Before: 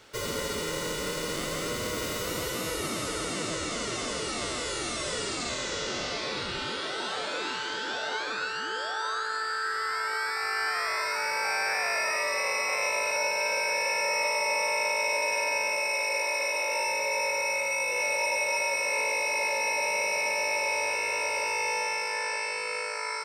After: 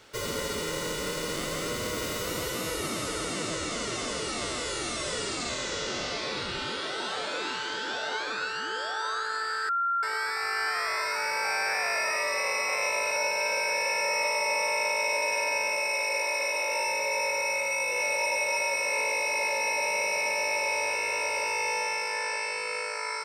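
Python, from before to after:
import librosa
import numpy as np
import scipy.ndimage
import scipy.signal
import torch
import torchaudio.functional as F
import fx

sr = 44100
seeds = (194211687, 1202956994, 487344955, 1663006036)

y = fx.edit(x, sr, fx.bleep(start_s=9.69, length_s=0.34, hz=1380.0, db=-24.0), tone=tone)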